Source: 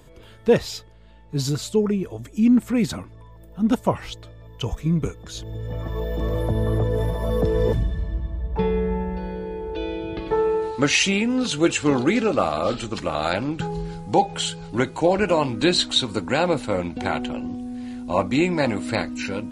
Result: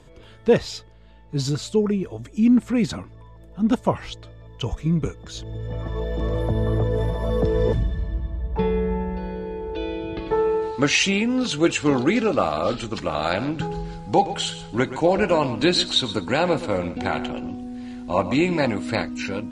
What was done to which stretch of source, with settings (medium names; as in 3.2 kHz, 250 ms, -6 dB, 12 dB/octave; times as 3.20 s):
12.99–18.65 s: feedback delay 124 ms, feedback 16%, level -13 dB
whole clip: low-pass 7.7 kHz 12 dB/octave